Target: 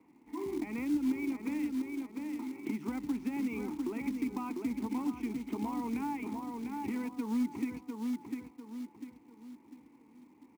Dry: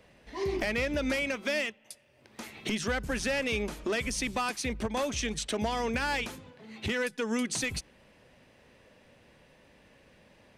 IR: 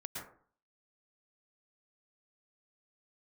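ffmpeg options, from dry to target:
-filter_complex "[0:a]equalizer=f=250:t=o:w=0.33:g=5,equalizer=f=800:t=o:w=0.33:g=-6,equalizer=f=4k:t=o:w=0.33:g=-7,asplit=2[a][b];[b]adelay=698,lowpass=f=2k:p=1,volume=-6dB,asplit=2[c][d];[d]adelay=698,lowpass=f=2k:p=1,volume=0.39,asplit=2[e][f];[f]adelay=698,lowpass=f=2k:p=1,volume=0.39,asplit=2[g][h];[h]adelay=698,lowpass=f=2k:p=1,volume=0.39,asplit=2[i][j];[j]adelay=698,lowpass=f=2k:p=1,volume=0.39[k];[c][e][g][i][k]amix=inputs=5:normalize=0[l];[a][l]amix=inputs=2:normalize=0,acontrast=81,asplit=2[m][n];[n]asoftclip=type=tanh:threshold=-17.5dB,volume=-9dB[o];[m][o]amix=inputs=2:normalize=0,asplit=3[p][q][r];[p]bandpass=f=300:t=q:w=8,volume=0dB[s];[q]bandpass=f=870:t=q:w=8,volume=-6dB[t];[r]bandpass=f=2.24k:t=q:w=8,volume=-9dB[u];[s][t][u]amix=inputs=3:normalize=0,highshelf=f=2.1k:t=q:w=1.5:g=-11,acrusher=bits=5:mode=log:mix=0:aa=0.000001,acrossover=split=220[v][w];[w]acompressor=threshold=-36dB:ratio=3[x];[v][x]amix=inputs=2:normalize=0"

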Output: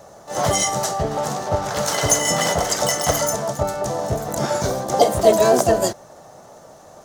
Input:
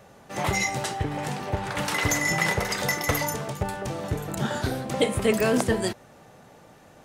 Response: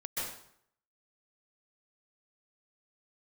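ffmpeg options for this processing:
-filter_complex "[0:a]acontrast=29,asplit=2[a][b];[b]asetrate=66075,aresample=44100,atempo=0.66742,volume=-2dB[c];[a][c]amix=inputs=2:normalize=0,equalizer=f=250:t=o:w=0.67:g=-4,equalizer=f=630:t=o:w=0.67:g=10,equalizer=f=2.5k:t=o:w=0.67:g=-10,equalizer=f=6.3k:t=o:w=0.67:g=10,volume=-3.5dB"

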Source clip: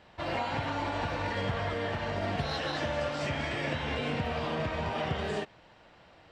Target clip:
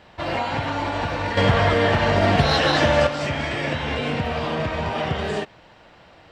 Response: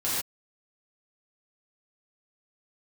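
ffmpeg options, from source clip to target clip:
-filter_complex "[0:a]asettb=1/sr,asplit=3[a][b][c];[a]atrim=end=1.374[d];[b]atrim=start=1.37:end=3.07,asetpts=PTS-STARTPTS,afade=t=in:d=0.004:c=qsin,afade=t=out:st=1.696:d=0.004:c=qsin,acontrast=80[e];[c]atrim=start=3.066[f];[d][e]acrossfade=d=0.004:c1=hsin:c2=qsin[g];[g][f]acrossfade=d=0.004:c1=qsin:c2=hsin,volume=7.5dB"

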